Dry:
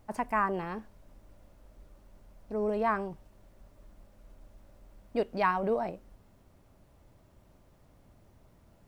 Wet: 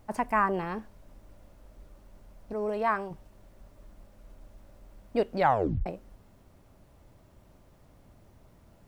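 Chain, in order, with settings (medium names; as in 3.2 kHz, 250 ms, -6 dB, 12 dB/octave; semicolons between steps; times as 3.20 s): 2.53–3.11 s: bass shelf 400 Hz -8 dB; 5.37 s: tape stop 0.49 s; trim +3 dB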